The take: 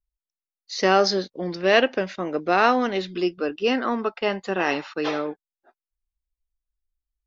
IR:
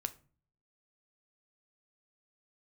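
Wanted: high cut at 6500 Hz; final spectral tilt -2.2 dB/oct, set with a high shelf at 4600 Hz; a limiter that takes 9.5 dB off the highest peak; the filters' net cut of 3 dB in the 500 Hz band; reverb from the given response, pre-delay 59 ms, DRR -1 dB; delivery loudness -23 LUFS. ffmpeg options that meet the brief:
-filter_complex "[0:a]lowpass=6.5k,equalizer=f=500:t=o:g=-4,highshelf=f=4.6k:g=6.5,alimiter=limit=-12.5dB:level=0:latency=1,asplit=2[a][b];[1:a]atrim=start_sample=2205,adelay=59[c];[b][c]afir=irnorm=-1:irlink=0,volume=1.5dB[d];[a][d]amix=inputs=2:normalize=0"

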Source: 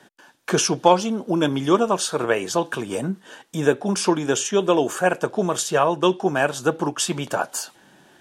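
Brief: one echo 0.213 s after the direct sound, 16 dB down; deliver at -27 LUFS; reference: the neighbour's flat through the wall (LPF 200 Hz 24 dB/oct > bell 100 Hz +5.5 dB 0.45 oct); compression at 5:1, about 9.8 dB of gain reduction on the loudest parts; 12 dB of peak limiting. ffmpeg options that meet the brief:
-af "acompressor=threshold=-20dB:ratio=5,alimiter=limit=-20.5dB:level=0:latency=1,lowpass=f=200:w=0.5412,lowpass=f=200:w=1.3066,equalizer=f=100:t=o:w=0.45:g=5.5,aecho=1:1:213:0.158,volume=12dB"

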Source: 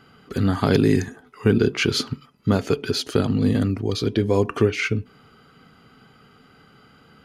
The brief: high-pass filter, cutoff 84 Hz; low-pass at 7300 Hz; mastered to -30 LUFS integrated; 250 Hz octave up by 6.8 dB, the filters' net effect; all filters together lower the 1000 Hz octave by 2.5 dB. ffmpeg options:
-af "highpass=84,lowpass=7.3k,equalizer=f=250:t=o:g=8.5,equalizer=f=1k:t=o:g=-4,volume=-12dB"

